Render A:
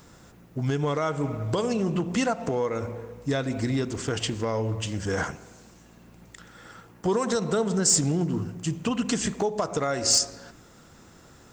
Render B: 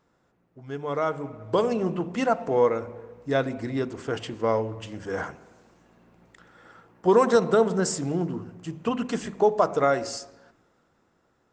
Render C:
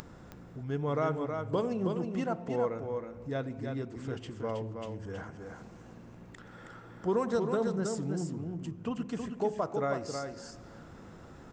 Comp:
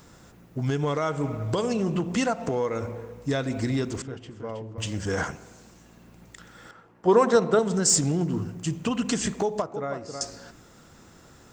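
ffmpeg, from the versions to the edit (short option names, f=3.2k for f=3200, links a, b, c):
-filter_complex "[2:a]asplit=2[a][b];[0:a]asplit=4[c][d][e][f];[c]atrim=end=4.022[g];[a]atrim=start=4.018:end=4.782[h];[d]atrim=start=4.778:end=6.712[i];[1:a]atrim=start=6.708:end=7.592[j];[e]atrim=start=7.588:end=9.622[k];[b]atrim=start=9.618:end=10.212[l];[f]atrim=start=10.208[m];[g][h]acrossfade=d=0.004:c1=hsin:c2=hsin[n];[n][i]acrossfade=d=0.004:c1=hsin:c2=hsin[o];[o][j]acrossfade=d=0.004:c1=hsin:c2=hsin[p];[p][k]acrossfade=d=0.004:c1=hsin:c2=hsin[q];[q][l]acrossfade=d=0.004:c1=hsin:c2=hsin[r];[r][m]acrossfade=d=0.004:c1=hsin:c2=hsin"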